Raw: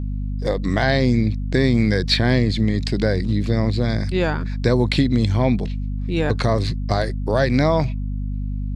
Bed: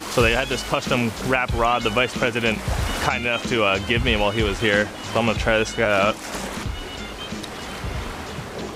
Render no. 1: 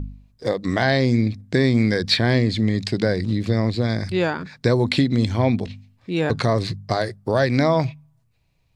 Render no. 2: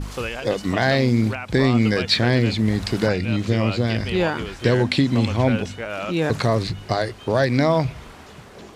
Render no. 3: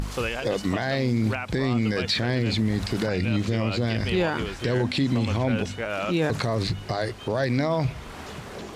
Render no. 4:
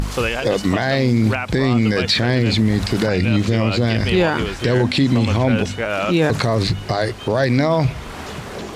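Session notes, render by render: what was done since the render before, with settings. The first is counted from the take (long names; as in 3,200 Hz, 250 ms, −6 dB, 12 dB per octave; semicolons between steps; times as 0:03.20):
hum removal 50 Hz, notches 5
mix in bed −10.5 dB
brickwall limiter −14.5 dBFS, peak gain reduction 10 dB; upward compression, threshold −30 dBFS
level +7.5 dB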